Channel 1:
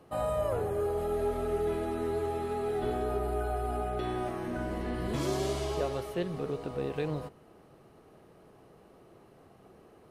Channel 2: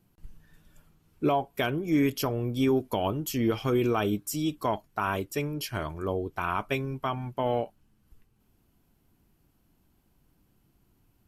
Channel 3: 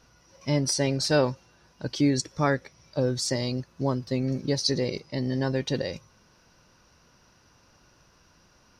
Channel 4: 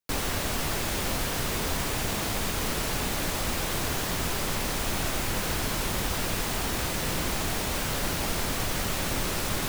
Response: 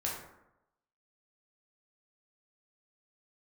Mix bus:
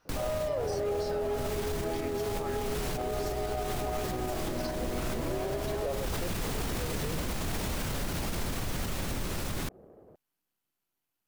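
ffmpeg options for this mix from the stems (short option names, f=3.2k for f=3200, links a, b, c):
-filter_complex "[0:a]equalizer=f=570:w=2.1:g=7.5,adynamicsmooth=sensitivity=4.5:basefreq=580,adelay=50,volume=1.5dB[a];[1:a]highpass=f=1.4k:p=1,aeval=exprs='max(val(0),0)':c=same,volume=-5dB[b];[2:a]equalizer=f=1.2k:t=o:w=2.8:g=9.5,acompressor=threshold=-23dB:ratio=6,flanger=delay=6.6:depth=5.9:regen=66:speed=0.33:shape=sinusoidal,volume=-10dB,asplit=2[c][d];[3:a]lowshelf=f=390:g=7.5,dynaudnorm=f=310:g=13:m=9.5dB,volume=-4dB[e];[d]apad=whole_len=427184[f];[e][f]sidechaincompress=threshold=-50dB:ratio=10:attack=6.8:release=285[g];[a][b][c][g]amix=inputs=4:normalize=0,alimiter=limit=-24dB:level=0:latency=1:release=78"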